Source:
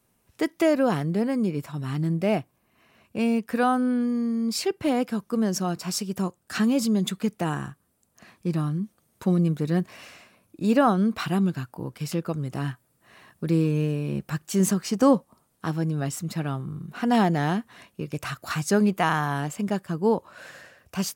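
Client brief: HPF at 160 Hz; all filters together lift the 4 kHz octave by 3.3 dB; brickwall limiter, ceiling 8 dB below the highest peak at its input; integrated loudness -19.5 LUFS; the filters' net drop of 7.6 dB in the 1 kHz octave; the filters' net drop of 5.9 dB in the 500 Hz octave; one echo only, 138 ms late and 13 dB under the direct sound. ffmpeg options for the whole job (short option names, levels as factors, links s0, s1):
-af "highpass=160,equalizer=f=500:t=o:g=-5,equalizer=f=1000:t=o:g=-9,equalizer=f=4000:t=o:g=5,alimiter=limit=0.112:level=0:latency=1,aecho=1:1:138:0.224,volume=3.35"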